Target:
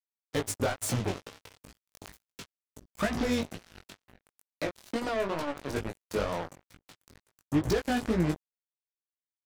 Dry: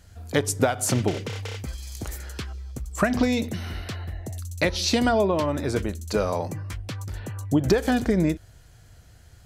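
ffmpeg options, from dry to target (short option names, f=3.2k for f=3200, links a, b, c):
-filter_complex "[0:a]asettb=1/sr,asplit=3[a][b][c];[a]atrim=end=1.804[d];[b]atrim=start=1.8:end=2.63,asetpts=PTS-STARTPTS,afade=t=in:d=0.004:c=qsin,afade=t=out:st=0.826:d=0.004:c=qsin,equalizer=f=2.7k:t=o:w=2.6:g=3[e];[c]atrim=start=2.626[f];[d][e]acrossfade=d=0.004:c1=hsin:c2=qsin[g];[g][f]acrossfade=d=0.004:c1=qsin:c2=hsin,asettb=1/sr,asplit=3[h][i][j];[h]atrim=end=4.224[k];[i]atrim=start=4.22:end=5.69,asetpts=PTS-STARTPTS,afade=t=in:d=0.004:c=qsin,afade=t=out:st=1.466:d=0.004:c=qsin,acrossover=split=220|1000[l][m][n];[l]acompressor=threshold=-43dB:ratio=4[o];[m]acompressor=threshold=-22dB:ratio=4[p];[n]acompressor=threshold=-34dB:ratio=4[q];[o][p][q]amix=inputs=3:normalize=0[r];[j]atrim=start=5.686[s];[k][r]acrossfade=d=0.004:c1=hsin:c2=qsin[t];[t][s]acrossfade=d=0.004:c1=qsin:c2=hsin,asoftclip=type=tanh:threshold=-22.5dB,acrusher=bits=3:mix=0:aa=0.5,flanger=delay=17:depth=4.5:speed=2.2,volume=3.5dB"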